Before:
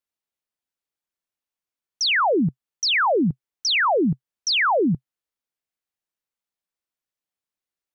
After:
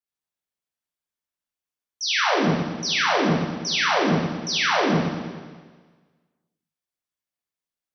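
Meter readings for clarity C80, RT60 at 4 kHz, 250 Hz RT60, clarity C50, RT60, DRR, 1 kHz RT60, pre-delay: 1.0 dB, 1.5 s, 1.5 s, -1.0 dB, 1.5 s, -7.0 dB, 1.5 s, 13 ms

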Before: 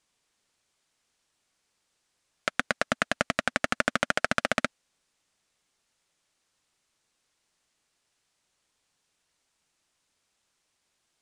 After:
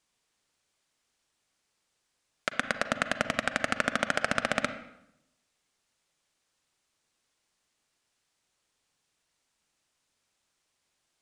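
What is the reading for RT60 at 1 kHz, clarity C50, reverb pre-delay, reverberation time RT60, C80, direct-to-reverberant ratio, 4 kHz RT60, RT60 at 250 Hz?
0.80 s, 11.0 dB, 36 ms, 0.80 s, 13.0 dB, 10.0 dB, 0.70 s, 0.95 s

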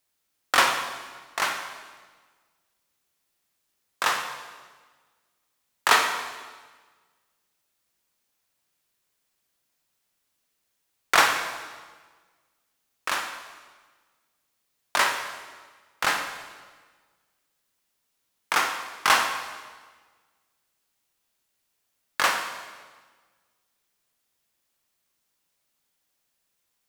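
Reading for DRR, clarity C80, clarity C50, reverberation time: 4.5 dB, 8.0 dB, 6.5 dB, 1.4 s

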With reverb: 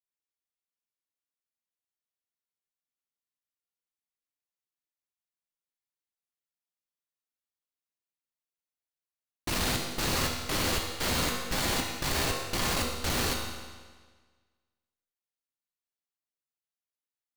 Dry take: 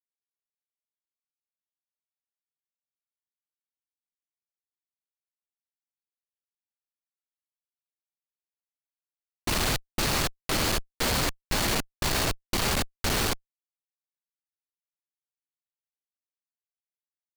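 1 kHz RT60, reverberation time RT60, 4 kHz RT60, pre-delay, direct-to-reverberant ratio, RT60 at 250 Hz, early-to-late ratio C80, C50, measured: 1.5 s, 1.5 s, 1.4 s, 4 ms, -0.5 dB, 1.5 s, 4.5 dB, 3.0 dB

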